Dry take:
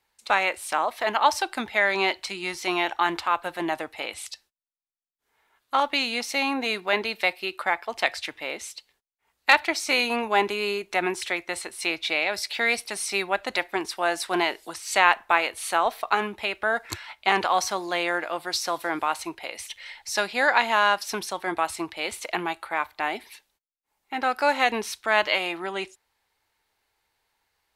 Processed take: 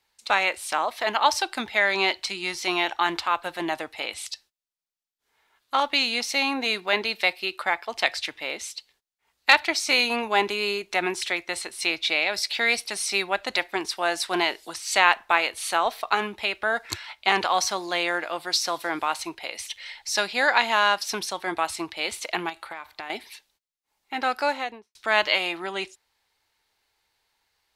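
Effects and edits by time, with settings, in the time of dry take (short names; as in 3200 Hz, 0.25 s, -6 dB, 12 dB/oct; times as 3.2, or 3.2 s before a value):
22.49–23.1 compressor 10:1, threshold -31 dBFS
24.3–24.95 studio fade out
whole clip: bell 4500 Hz +5.5 dB 1.6 oct; gain -1 dB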